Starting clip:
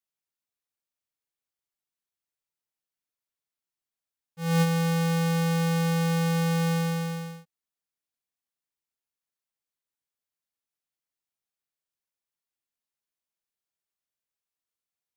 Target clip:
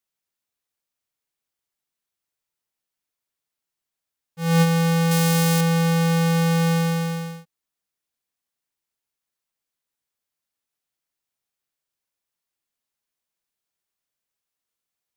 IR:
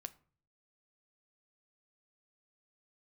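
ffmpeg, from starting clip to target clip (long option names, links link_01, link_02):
-filter_complex "[0:a]asettb=1/sr,asplit=3[link_01][link_02][link_03];[link_01]atrim=end=5.114[link_04];[link_02]atrim=start=5.11:end=5.61,asetpts=PTS-STARTPTS,afade=type=in:duration=0.004:curve=qsin,afade=type=out:start_time=0.496:duration=0.004:curve=qsin,highshelf=frequency=4400:gain=10.5[link_05];[link_03]atrim=start=5.606[link_06];[link_04][link_05]acrossfade=duration=0.004:curve1=hsin:curve2=qsin[link_07];[link_07][link_06]acrossfade=duration=0.004:curve1=qsin:curve2=hsin,volume=5.5dB"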